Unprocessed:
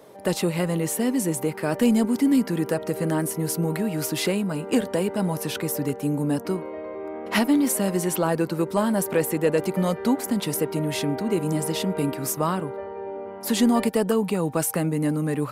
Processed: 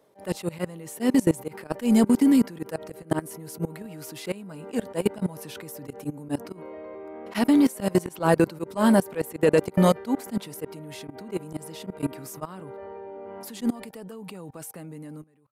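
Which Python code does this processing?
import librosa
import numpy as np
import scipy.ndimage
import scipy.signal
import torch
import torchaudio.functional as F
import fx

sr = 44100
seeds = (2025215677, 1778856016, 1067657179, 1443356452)

y = fx.fade_out_tail(x, sr, length_s=3.38)
y = fx.level_steps(y, sr, step_db=23)
y = fx.auto_swell(y, sr, attack_ms=114.0)
y = F.gain(torch.from_numpy(y), 6.5).numpy()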